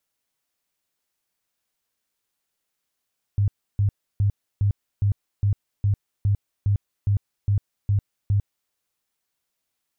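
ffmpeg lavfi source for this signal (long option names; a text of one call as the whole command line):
ffmpeg -f lavfi -i "aevalsrc='0.15*sin(2*PI*101*mod(t,0.41))*lt(mod(t,0.41),10/101)':duration=5.33:sample_rate=44100" out.wav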